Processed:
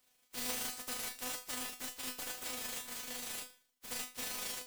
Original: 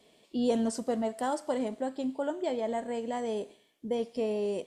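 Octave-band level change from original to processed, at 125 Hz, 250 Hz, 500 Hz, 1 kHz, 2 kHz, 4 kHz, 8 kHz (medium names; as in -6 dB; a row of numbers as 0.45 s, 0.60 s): no reading, -20.5 dB, -22.0 dB, -12.5 dB, +2.0 dB, +4.5 dB, +8.0 dB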